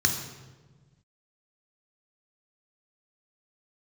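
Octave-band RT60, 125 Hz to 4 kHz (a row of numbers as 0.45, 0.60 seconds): 2.0, 1.8, 1.5, 1.2, 1.0, 0.90 seconds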